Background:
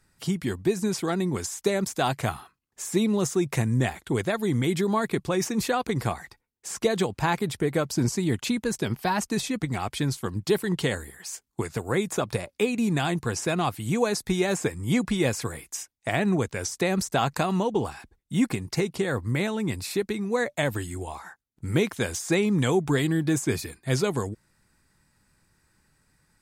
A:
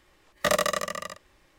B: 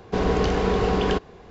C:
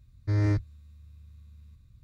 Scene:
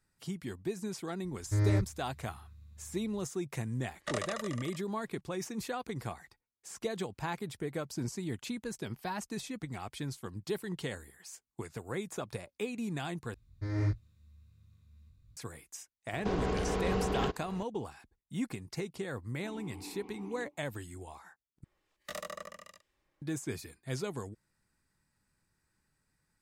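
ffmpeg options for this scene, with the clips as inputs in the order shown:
ffmpeg -i bed.wav -i cue0.wav -i cue1.wav -i cue2.wav -filter_complex "[3:a]asplit=2[link_01][link_02];[1:a]asplit=2[link_03][link_04];[2:a]asplit=2[link_05][link_06];[0:a]volume=-12dB[link_07];[link_03]aresample=22050,aresample=44100[link_08];[link_02]flanger=delay=19:depth=4.3:speed=1.5[link_09];[link_05]alimiter=limit=-21dB:level=0:latency=1:release=266[link_10];[link_06]asplit=3[link_11][link_12][link_13];[link_11]bandpass=frequency=300:width_type=q:width=8,volume=0dB[link_14];[link_12]bandpass=frequency=870:width_type=q:width=8,volume=-6dB[link_15];[link_13]bandpass=frequency=2240:width_type=q:width=8,volume=-9dB[link_16];[link_14][link_15][link_16]amix=inputs=3:normalize=0[link_17];[link_04]acrossover=split=1900[link_18][link_19];[link_18]aeval=exprs='val(0)*(1-0.5/2+0.5/2*cos(2*PI*1.3*n/s))':channel_layout=same[link_20];[link_19]aeval=exprs='val(0)*(1-0.5/2-0.5/2*cos(2*PI*1.3*n/s))':channel_layout=same[link_21];[link_20][link_21]amix=inputs=2:normalize=0[link_22];[link_07]asplit=3[link_23][link_24][link_25];[link_23]atrim=end=13.344[link_26];[link_09]atrim=end=2.03,asetpts=PTS-STARTPTS,volume=-3dB[link_27];[link_24]atrim=start=15.366:end=21.644[link_28];[link_22]atrim=end=1.58,asetpts=PTS-STARTPTS,volume=-15dB[link_29];[link_25]atrim=start=23.216[link_30];[link_01]atrim=end=2.03,asetpts=PTS-STARTPTS,volume=-3dB,afade=type=in:duration=0.004:curve=hsin,afade=type=out:start_time=2.026:duration=0.004:curve=hsin,adelay=1240[link_31];[link_08]atrim=end=1.58,asetpts=PTS-STARTPTS,volume=-13dB,afade=type=in:duration=0.004:curve=hsin,afade=type=out:start_time=1.576:duration=0.004:curve=hsin,adelay=3630[link_32];[link_10]atrim=end=1.5,asetpts=PTS-STARTPTS,volume=-2dB,afade=type=in:duration=0.004:curve=hsin,afade=type=out:start_time=1.496:duration=0.004:curve=hsin,adelay=16130[link_33];[link_17]atrim=end=1.5,asetpts=PTS-STARTPTS,volume=-14dB,afade=type=in:duration=0.004:curve=hsin,afade=type=out:start_time=1.496:duration=0.004:curve=hsin,adelay=19300[link_34];[link_26][link_27]acrossfade=duration=0.004:curve1=hsin:curve2=hsin[link_35];[link_35][link_28]acrossfade=duration=0.004:curve1=hsin:curve2=hsin[link_36];[link_36][link_29]acrossfade=duration=0.004:curve1=hsin:curve2=hsin[link_37];[link_37][link_30]acrossfade=duration=0.004:curve1=hsin:curve2=hsin[link_38];[link_38][link_31][link_32][link_33][link_34]amix=inputs=5:normalize=0" out.wav

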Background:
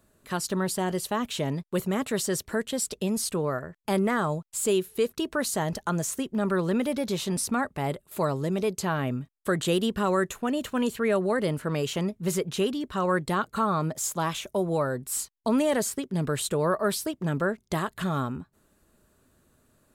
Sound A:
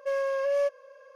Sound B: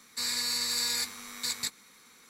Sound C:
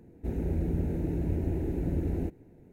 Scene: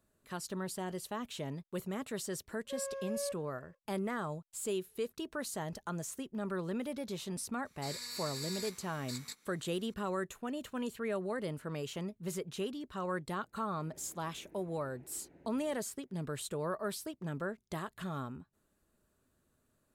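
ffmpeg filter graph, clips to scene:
ffmpeg -i bed.wav -i cue0.wav -i cue1.wav -i cue2.wav -filter_complex "[0:a]volume=-11.5dB[link_01];[1:a]equalizer=frequency=460:width_type=o:width=0.77:gain=3.5[link_02];[3:a]bandpass=frequency=1700:width_type=q:width=0.64:csg=0[link_03];[link_02]atrim=end=1.15,asetpts=PTS-STARTPTS,volume=-15.5dB,afade=type=in:duration=0.1,afade=type=out:start_time=1.05:duration=0.1,adelay=2640[link_04];[2:a]atrim=end=2.29,asetpts=PTS-STARTPTS,volume=-12.5dB,afade=type=in:duration=0.004:curve=hsin,afade=type=out:start_time=2.286:duration=0.004:curve=hsin,adelay=7650[link_05];[link_03]atrim=end=2.72,asetpts=PTS-STARTPTS,volume=-16dB,afade=type=in:duration=0.004:curve=hsin,afade=type=out:start_time=2.716:duration=0.004:curve=hsin,adelay=594468S[link_06];[link_01][link_04][link_05][link_06]amix=inputs=4:normalize=0" out.wav

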